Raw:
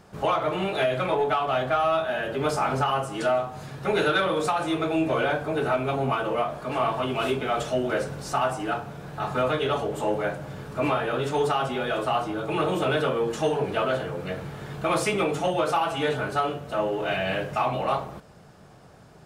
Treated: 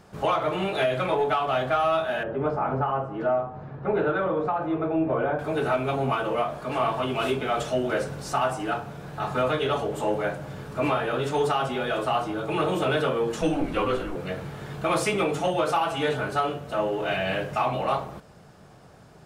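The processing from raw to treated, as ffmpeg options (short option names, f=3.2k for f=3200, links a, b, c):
-filter_complex "[0:a]asettb=1/sr,asplit=3[a][b][c];[a]atrim=end=2.234[d];[b]atrim=start=2.23:end=5.39,asetpts=PTS-STARTPTS,afade=t=in:d=0.004:c=qsin,afade=t=out:st=3.156:d=0.004:c=qsin,lowpass=1.2k[e];[c]atrim=start=5.386[f];[d][e]acrossfade=d=0.004:c1=hsin:c2=qsin[g];[g][f]acrossfade=d=0.004:c1=qsin:c2=hsin,asettb=1/sr,asplit=3[h][i][j];[h]atrim=end=13.414[k];[i]atrim=start=13.41:end=14.16,asetpts=PTS-STARTPTS,afade=t=in:d=0.004:c=qsin,afade=t=out:st=0.746:d=0.004:c=qsin,afreqshift=-140[l];[j]atrim=start=14.156[m];[k][l]acrossfade=d=0.004:c1=hsin:c2=qsin[n];[n][m]acrossfade=d=0.004:c1=qsin:c2=hsin"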